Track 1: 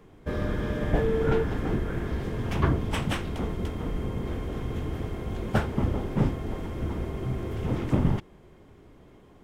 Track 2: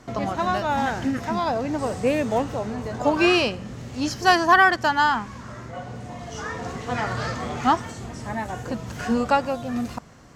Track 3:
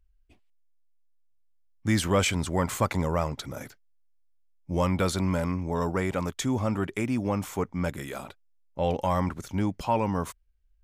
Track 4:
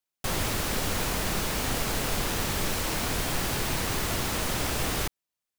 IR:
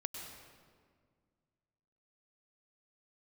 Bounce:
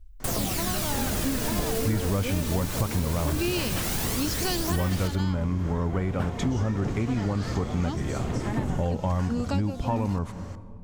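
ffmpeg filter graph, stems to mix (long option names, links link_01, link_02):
-filter_complex "[0:a]adelay=650,volume=0.5dB[link_01];[1:a]acrossover=split=400|3000[link_02][link_03][link_04];[link_03]acompressor=threshold=-36dB:ratio=6[link_05];[link_02][link_05][link_04]amix=inputs=3:normalize=0,adelay=200,volume=1.5dB,asplit=2[link_06][link_07];[link_07]volume=-18.5dB[link_08];[2:a]aemphasis=mode=reproduction:type=bsi,volume=1.5dB,asplit=2[link_09][link_10];[link_10]volume=-12dB[link_11];[3:a]highshelf=frequency=3900:gain=9,aphaser=in_gain=1:out_gain=1:delay=3.4:decay=0.5:speed=0.2:type=sinusoidal,volume=-4dB,asplit=2[link_12][link_13];[link_13]volume=-10.5dB[link_14];[4:a]atrim=start_sample=2205[link_15];[link_08][link_11]amix=inputs=2:normalize=0[link_16];[link_16][link_15]afir=irnorm=-1:irlink=0[link_17];[link_14]aecho=0:1:77|154|231|308|385:1|0.36|0.13|0.0467|0.0168[link_18];[link_01][link_06][link_09][link_12][link_17][link_18]amix=inputs=6:normalize=0,acompressor=threshold=-24dB:ratio=4"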